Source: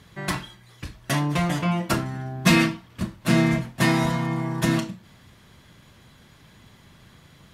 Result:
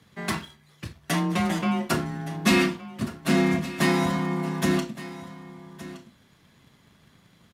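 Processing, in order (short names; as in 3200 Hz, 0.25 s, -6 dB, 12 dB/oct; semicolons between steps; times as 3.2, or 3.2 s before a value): frequency shift +29 Hz; sample leveller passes 1; echo 1.168 s -16 dB; gain -5 dB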